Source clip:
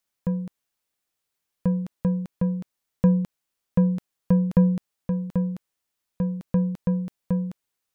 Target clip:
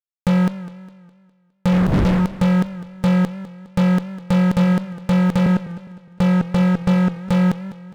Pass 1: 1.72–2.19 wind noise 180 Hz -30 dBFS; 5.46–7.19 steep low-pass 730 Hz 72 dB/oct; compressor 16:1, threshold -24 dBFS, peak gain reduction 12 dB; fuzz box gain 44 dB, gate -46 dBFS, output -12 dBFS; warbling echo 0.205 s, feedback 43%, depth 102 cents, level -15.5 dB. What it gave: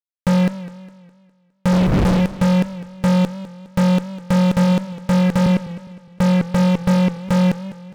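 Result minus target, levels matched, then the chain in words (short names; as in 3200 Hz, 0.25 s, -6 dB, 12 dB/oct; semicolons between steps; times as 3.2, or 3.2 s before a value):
compressor: peak gain reduction -6.5 dB
1.72–2.19 wind noise 180 Hz -30 dBFS; 5.46–7.19 steep low-pass 730 Hz 72 dB/oct; compressor 16:1, threshold -31 dBFS, peak gain reduction 18.5 dB; fuzz box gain 44 dB, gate -46 dBFS, output -12 dBFS; warbling echo 0.205 s, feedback 43%, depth 102 cents, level -15.5 dB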